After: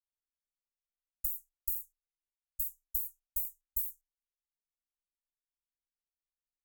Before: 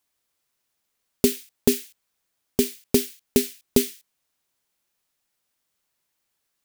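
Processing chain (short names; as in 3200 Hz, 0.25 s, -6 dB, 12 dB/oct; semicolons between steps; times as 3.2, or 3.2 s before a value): low-pass opened by the level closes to 900 Hz, open at -19 dBFS; ripple EQ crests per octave 0.73, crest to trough 13 dB; compressor, threshold -17 dBFS, peak gain reduction 7.5 dB; inverse Chebyshev band-stop 160–4000 Hz, stop band 60 dB; high shelf 3500 Hz +11 dB; gain -7.5 dB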